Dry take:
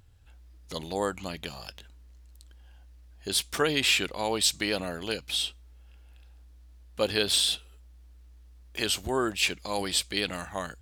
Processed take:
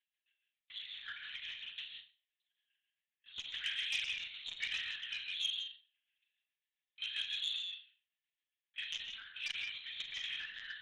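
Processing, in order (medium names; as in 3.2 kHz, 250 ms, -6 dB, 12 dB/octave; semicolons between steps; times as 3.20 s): Chebyshev high-pass 1.7 kHz, order 5; gate -57 dBFS, range -14 dB; in parallel at -10.5 dB: companded quantiser 2-bit; on the sum: differentiator; reverse; compression 8:1, threshold -41 dBFS, peak gain reduction 20 dB; reverse; level-controlled noise filter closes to 2.8 kHz, open at -39 dBFS; square tremolo 7.4 Hz, depth 60%, duty 35%; hard clipper -34 dBFS, distortion -23 dB; flutter echo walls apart 6.5 m, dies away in 0.36 s; gated-style reverb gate 200 ms rising, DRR 3.5 dB; LPC vocoder at 8 kHz pitch kept; transformer saturation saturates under 2.8 kHz; trim +12 dB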